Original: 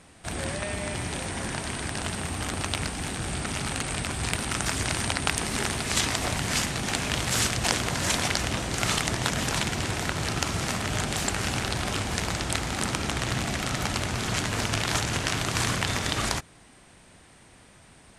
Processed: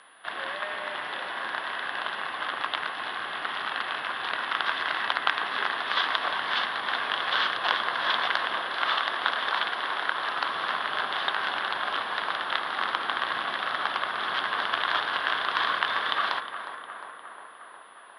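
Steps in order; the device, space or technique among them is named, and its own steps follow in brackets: 8.69–10.38 HPF 230 Hz 6 dB/oct; tape echo 0.357 s, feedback 76%, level -9 dB, low-pass 2300 Hz; toy sound module (decimation joined by straight lines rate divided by 4×; pulse-width modulation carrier 10000 Hz; speaker cabinet 660–4300 Hz, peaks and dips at 1100 Hz +9 dB, 1600 Hz +7 dB, 2400 Hz -7 dB, 3400 Hz +8 dB)

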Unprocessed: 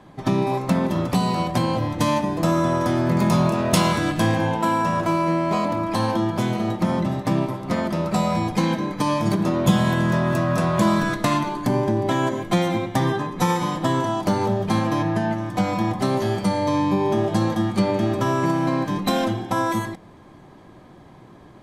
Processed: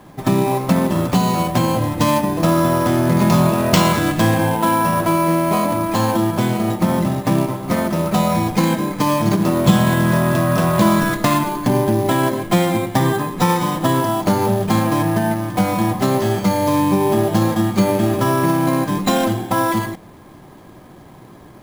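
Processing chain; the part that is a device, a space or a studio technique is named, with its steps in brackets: early companding sampler (sample-rate reducer 11000 Hz, jitter 0%; companded quantiser 6-bit); gain +4.5 dB

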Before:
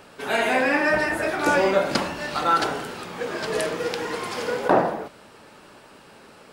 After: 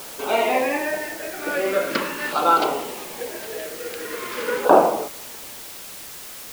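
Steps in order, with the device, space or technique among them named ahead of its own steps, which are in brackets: shortwave radio (BPF 310–3000 Hz; tremolo 0.41 Hz, depth 75%; LFO notch saw down 0.43 Hz 660–2000 Hz; white noise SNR 14 dB); gain +6.5 dB

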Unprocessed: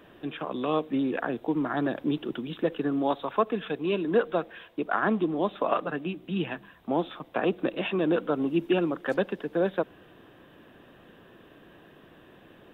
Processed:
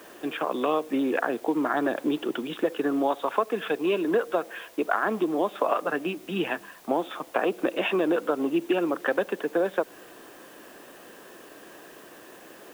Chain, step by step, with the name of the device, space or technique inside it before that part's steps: baby monitor (BPF 340–3100 Hz; compressor, threshold -28 dBFS, peak gain reduction 9.5 dB; white noise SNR 27 dB); gain +7.5 dB

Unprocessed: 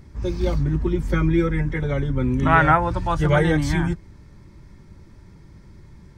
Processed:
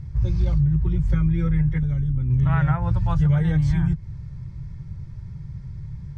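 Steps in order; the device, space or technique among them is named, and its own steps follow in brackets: jukebox (LPF 7700 Hz 12 dB/oct; resonant low shelf 190 Hz +11.5 dB, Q 3; compressor 5:1, threshold -14 dBFS, peak gain reduction 12.5 dB); 1.78–2.3 ten-band EQ 125 Hz -6 dB, 250 Hz +5 dB, 500 Hz -9 dB, 1000 Hz -6 dB, 2000 Hz -5 dB, 4000 Hz -6 dB, 8000 Hz +5 dB; gain -3 dB

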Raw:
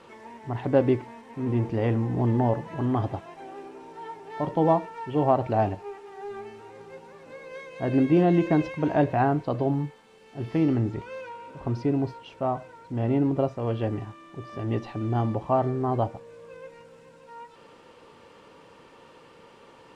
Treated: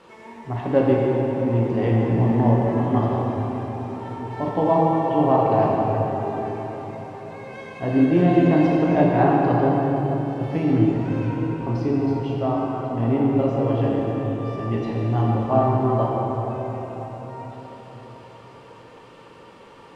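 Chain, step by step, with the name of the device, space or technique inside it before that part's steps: cathedral (reverb RT60 4.6 s, pre-delay 8 ms, DRR -4 dB)

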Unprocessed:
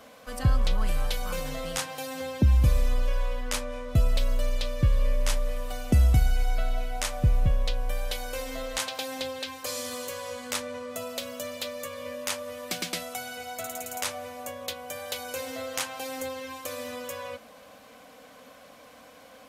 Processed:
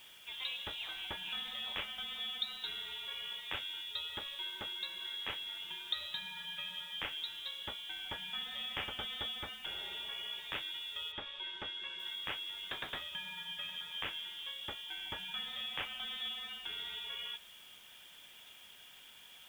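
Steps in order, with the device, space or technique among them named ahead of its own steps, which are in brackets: scrambled radio voice (BPF 330–3200 Hz; inverted band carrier 3900 Hz; white noise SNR 20 dB); 11.11–11.98 LPF 3600 Hz -> 5800 Hz 12 dB/oct; gain -5 dB

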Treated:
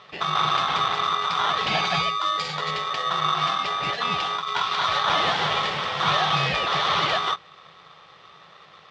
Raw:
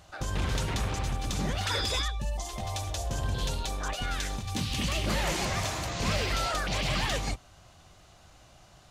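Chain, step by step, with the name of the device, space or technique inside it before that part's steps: 2.08–2.71 bell 5700 Hz +15 dB 0.45 oct; ring modulator pedal into a guitar cabinet (polarity switched at an audio rate 1200 Hz; speaker cabinet 91–4300 Hz, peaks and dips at 160 Hz +9 dB, 260 Hz -10 dB, 770 Hz +9 dB, 3300 Hz +5 dB); gain +5.5 dB

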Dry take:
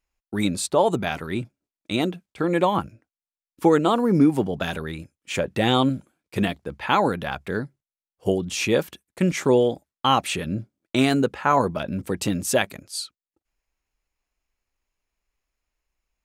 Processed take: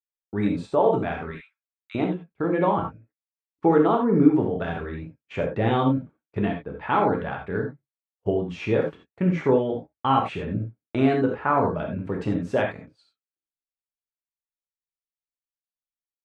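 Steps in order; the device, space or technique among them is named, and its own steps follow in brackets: hearing-loss simulation (LPF 1700 Hz 12 dB/oct; expander -39 dBFS); 1.31–1.95 steep high-pass 1300 Hz 36 dB/oct; non-linear reverb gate 0.11 s flat, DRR 0.5 dB; gain -3 dB

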